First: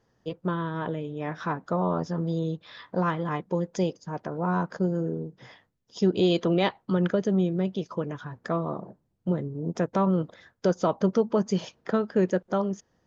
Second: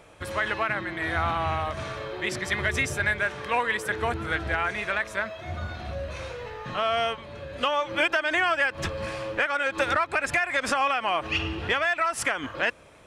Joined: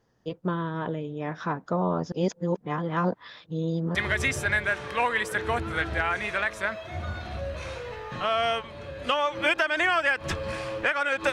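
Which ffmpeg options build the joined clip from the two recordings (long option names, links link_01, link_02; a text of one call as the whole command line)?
ffmpeg -i cue0.wav -i cue1.wav -filter_complex "[0:a]apad=whole_dur=11.32,atrim=end=11.32,asplit=2[link_01][link_02];[link_01]atrim=end=2.122[link_03];[link_02]atrim=start=2.118:end=3.952,asetpts=PTS-STARTPTS,areverse[link_04];[1:a]atrim=start=2.488:end=9.86[link_05];[link_03][link_04]acrossfade=duration=0.004:curve1=hsin:curve2=hsin[link_06];[link_06][link_05]acrossfade=duration=0.004:curve1=hsin:curve2=hsin" out.wav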